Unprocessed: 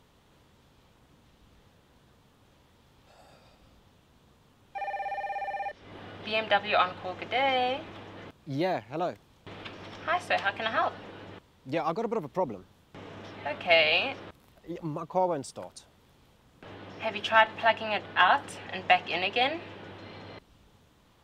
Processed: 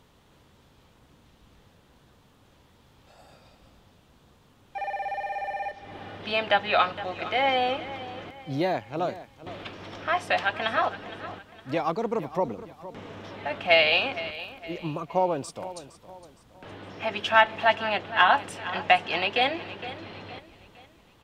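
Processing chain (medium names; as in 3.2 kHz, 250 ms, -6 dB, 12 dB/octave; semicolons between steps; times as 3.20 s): feedback delay 463 ms, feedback 40%, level -15 dB; trim +2.5 dB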